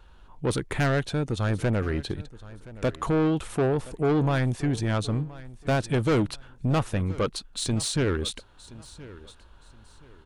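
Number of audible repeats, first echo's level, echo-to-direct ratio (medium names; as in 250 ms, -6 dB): 2, -19.0 dB, -18.5 dB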